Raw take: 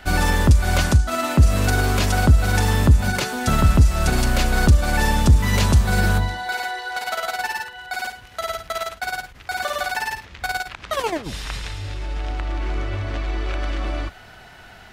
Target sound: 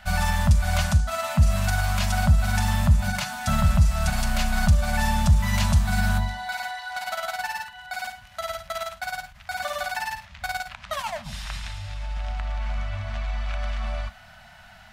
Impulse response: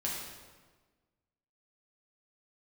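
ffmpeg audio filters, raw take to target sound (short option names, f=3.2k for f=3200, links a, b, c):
-filter_complex "[0:a]asplit=2[a][b];[1:a]atrim=start_sample=2205,atrim=end_sample=3528[c];[b][c]afir=irnorm=-1:irlink=0,volume=-12.5dB[d];[a][d]amix=inputs=2:normalize=0,afftfilt=real='re*(1-between(b*sr/4096,240,570))':imag='im*(1-between(b*sr/4096,240,570))':win_size=4096:overlap=0.75,volume=-6dB"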